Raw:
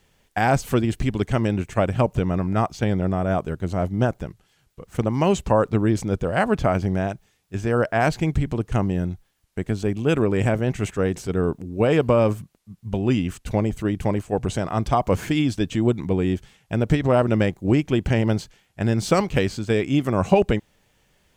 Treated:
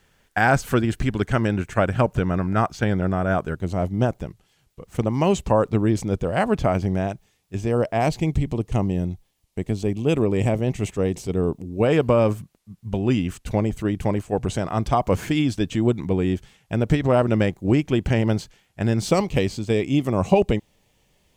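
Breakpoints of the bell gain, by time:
bell 1500 Hz 0.52 oct
+7 dB
from 3.56 s -4 dB
from 7.55 s -12 dB
from 11.83 s -1 dB
from 19.09 s -9.5 dB

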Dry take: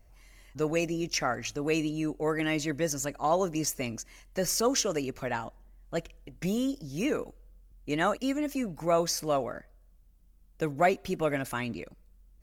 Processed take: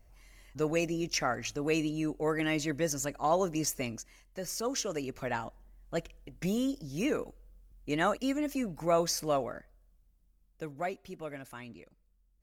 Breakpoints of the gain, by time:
3.82 s -1.5 dB
4.41 s -9.5 dB
5.32 s -1.5 dB
9.31 s -1.5 dB
11.1 s -12.5 dB

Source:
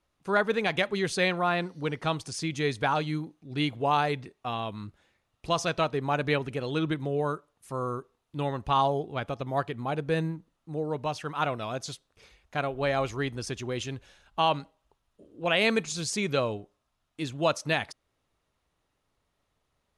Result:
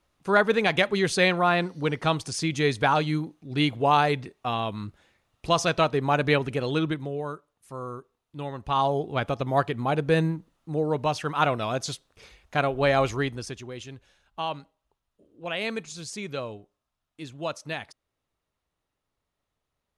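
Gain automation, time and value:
6.7 s +4.5 dB
7.22 s -4 dB
8.5 s -4 dB
9.15 s +5.5 dB
13.12 s +5.5 dB
13.71 s -6 dB

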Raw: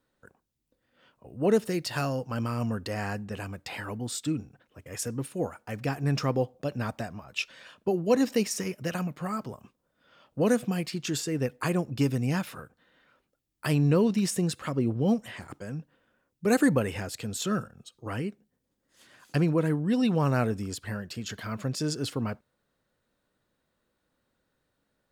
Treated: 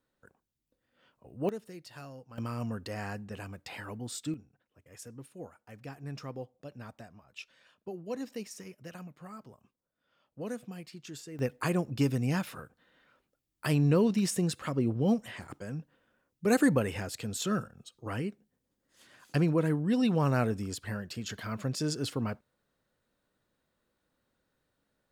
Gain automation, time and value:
-5 dB
from 1.49 s -17 dB
from 2.38 s -5.5 dB
from 4.34 s -14 dB
from 11.39 s -2 dB

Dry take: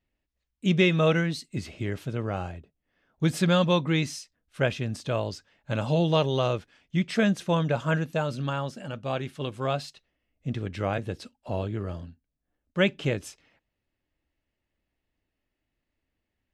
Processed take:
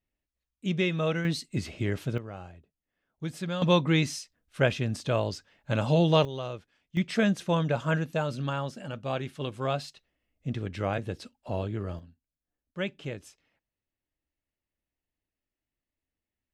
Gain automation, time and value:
-6 dB
from 1.25 s +1.5 dB
from 2.18 s -10.5 dB
from 3.62 s +1 dB
from 6.25 s -10 dB
from 6.97 s -1.5 dB
from 11.99 s -9.5 dB

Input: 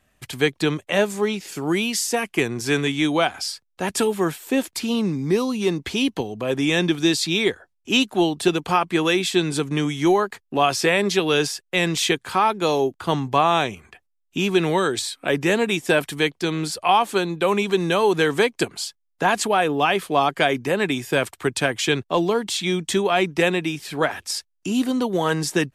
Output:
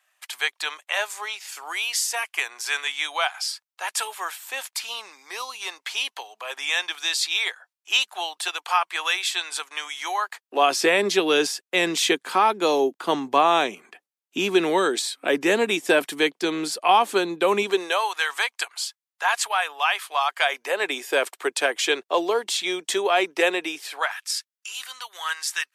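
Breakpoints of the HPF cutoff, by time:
HPF 24 dB/oct
10.29 s 810 Hz
10.72 s 250 Hz
17.61 s 250 Hz
18.1 s 860 Hz
20.32 s 860 Hz
20.96 s 390 Hz
23.78 s 390 Hz
24.19 s 1200 Hz

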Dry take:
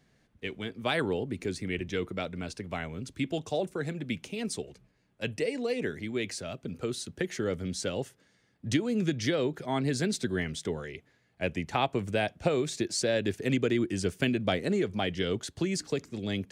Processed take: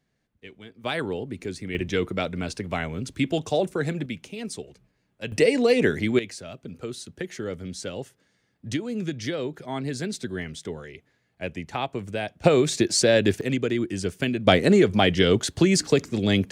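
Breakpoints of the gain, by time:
-8 dB
from 0.84 s +0.5 dB
from 1.75 s +7 dB
from 4.06 s 0 dB
from 5.32 s +11.5 dB
from 6.19 s -1 dB
from 12.44 s +9 dB
from 13.41 s +2 dB
from 14.47 s +11 dB

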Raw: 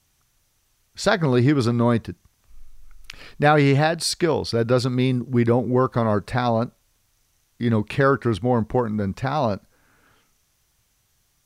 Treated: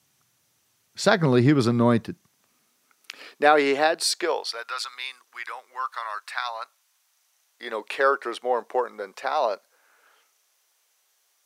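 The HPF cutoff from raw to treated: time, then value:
HPF 24 dB/oct
1.99 s 120 Hz
3.5 s 340 Hz
4.11 s 340 Hz
4.74 s 1100 Hz
6.38 s 1100 Hz
7.82 s 460 Hz

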